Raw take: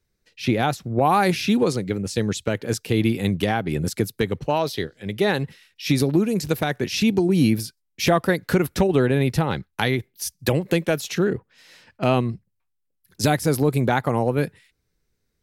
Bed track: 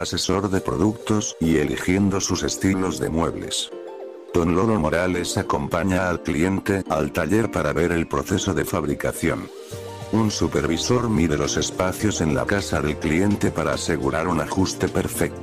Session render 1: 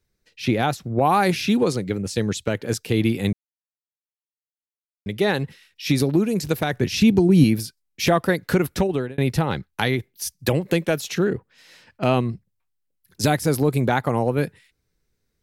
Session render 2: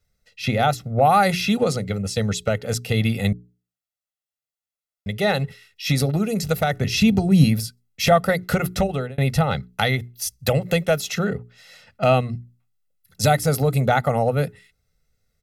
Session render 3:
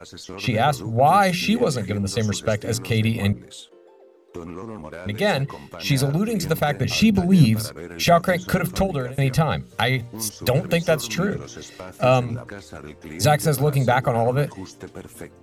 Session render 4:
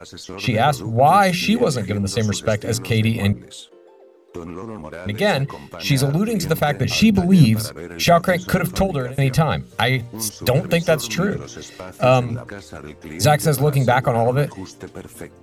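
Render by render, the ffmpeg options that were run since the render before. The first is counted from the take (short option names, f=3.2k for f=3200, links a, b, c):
-filter_complex "[0:a]asettb=1/sr,asplit=3[a][b][c];[a]atrim=end=6.734[d];[b]atrim=start=6.73:end=7.44,asetpts=PTS-STARTPTS,afade=t=in:d=0.004:c=qsin,afade=t=out:st=0.706:d=0.004:c=qsin,lowshelf=f=160:g=11.5[e];[c]atrim=start=7.436[f];[d][e]acrossfade=d=0.004:c1=hsin:c2=qsin[g];[g][f]acrossfade=d=0.004:c1=qsin:c2=hsin,asplit=4[h][i][j][k];[h]atrim=end=3.33,asetpts=PTS-STARTPTS,afade=t=out:st=3.326:d=0.004:c=hsin[l];[i]atrim=start=3.33:end=5.06,asetpts=PTS-STARTPTS,volume=0[m];[j]atrim=start=5.06:end=9.18,asetpts=PTS-STARTPTS,afade=t=in:d=0.004:c=hsin,afade=t=out:st=3.54:d=0.58:c=qsin[n];[k]atrim=start=9.18,asetpts=PTS-STARTPTS,afade=t=in:d=0.004:c=hsin[o];[l][m][n][o]concat=n=4:v=0:a=1"
-af "bandreject=f=60:t=h:w=6,bandreject=f=120:t=h:w=6,bandreject=f=180:t=h:w=6,bandreject=f=240:t=h:w=6,bandreject=f=300:t=h:w=6,bandreject=f=360:t=h:w=6,bandreject=f=420:t=h:w=6,aecho=1:1:1.5:0.79"
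-filter_complex "[1:a]volume=-15.5dB[a];[0:a][a]amix=inputs=2:normalize=0"
-af "volume=2.5dB,alimiter=limit=-2dB:level=0:latency=1"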